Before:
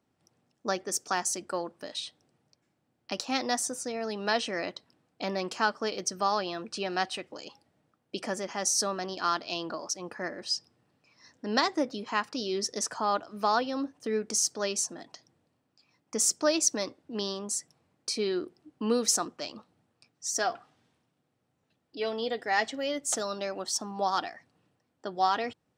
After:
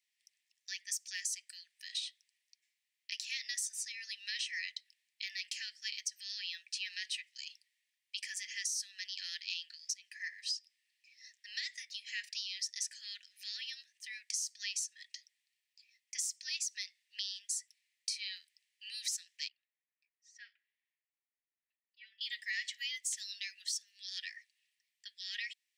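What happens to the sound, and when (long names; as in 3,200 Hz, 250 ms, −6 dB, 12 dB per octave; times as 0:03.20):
0:19.48–0:22.21: low-pass filter 1,000 Hz
whole clip: brickwall limiter −20 dBFS; Butterworth high-pass 1,800 Hz 96 dB per octave; downward compressor 6 to 1, threshold −36 dBFS; level +1.5 dB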